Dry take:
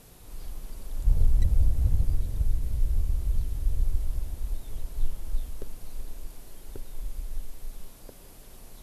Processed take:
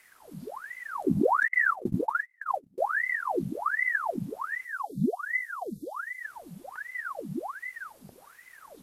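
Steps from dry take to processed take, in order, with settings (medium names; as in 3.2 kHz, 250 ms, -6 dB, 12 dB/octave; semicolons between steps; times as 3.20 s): 1.48–2.78 s: gate -20 dBFS, range -33 dB; 4.65–6.23 s: spectral selection erased 360–3600 Hz; ring modulator with a swept carrier 1.1 kHz, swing 85%, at 1.3 Hz; trim -3.5 dB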